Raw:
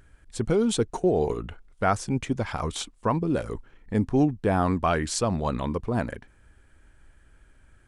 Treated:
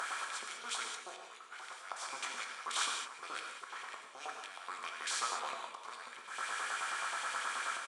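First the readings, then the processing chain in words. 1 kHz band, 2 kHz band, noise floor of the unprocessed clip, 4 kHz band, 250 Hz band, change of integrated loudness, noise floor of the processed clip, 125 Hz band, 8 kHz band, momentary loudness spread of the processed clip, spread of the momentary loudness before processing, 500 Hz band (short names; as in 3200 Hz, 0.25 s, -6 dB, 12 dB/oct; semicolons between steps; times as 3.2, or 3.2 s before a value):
-9.0 dB, -1.5 dB, -58 dBFS, -2.0 dB, -37.0 dB, -13.5 dB, -52 dBFS, under -40 dB, -4.0 dB, 12 LU, 11 LU, -25.5 dB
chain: per-bin compression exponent 0.4; notches 50/100/150/200/250/300/350/400/450 Hz; reverse; compressor 10:1, threshold -26 dBFS, peak gain reduction 13.5 dB; reverse; LFO high-pass saw up 9.4 Hz 920–2900 Hz; auto swell 0.183 s; doubler 21 ms -11.5 dB; non-linear reverb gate 0.22 s flat, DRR 1 dB; gain -5.5 dB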